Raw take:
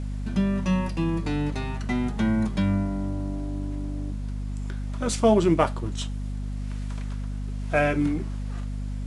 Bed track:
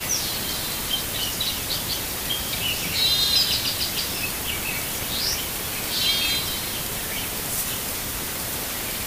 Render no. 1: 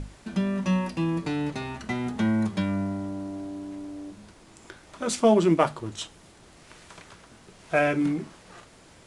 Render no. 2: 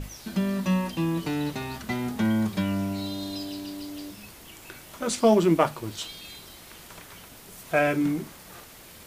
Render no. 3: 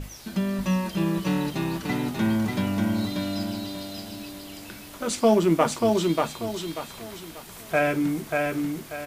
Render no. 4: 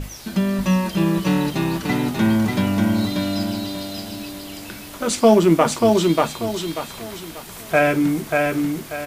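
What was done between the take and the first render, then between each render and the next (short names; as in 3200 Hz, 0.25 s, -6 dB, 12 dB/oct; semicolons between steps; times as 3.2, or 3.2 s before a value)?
notches 50/100/150/200/250 Hz
add bed track -20.5 dB
feedback echo 0.588 s, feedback 33%, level -3 dB
gain +6 dB; limiter -2 dBFS, peak gain reduction 2.5 dB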